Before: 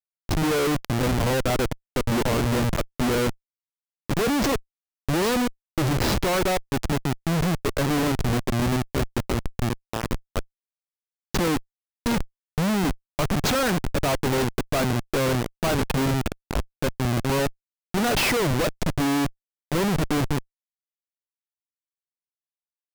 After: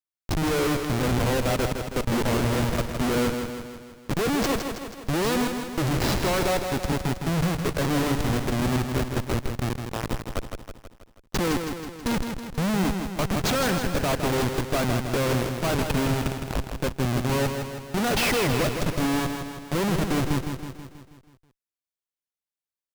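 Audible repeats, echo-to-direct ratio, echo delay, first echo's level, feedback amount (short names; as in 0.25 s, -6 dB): 6, -5.0 dB, 0.161 s, -6.5 dB, 56%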